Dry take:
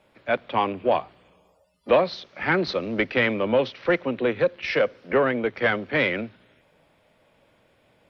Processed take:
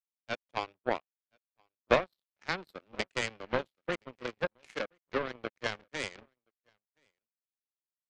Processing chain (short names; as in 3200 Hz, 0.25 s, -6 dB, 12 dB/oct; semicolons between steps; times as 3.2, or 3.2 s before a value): echo 1.024 s -12 dB; power-law curve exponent 3; gain +1.5 dB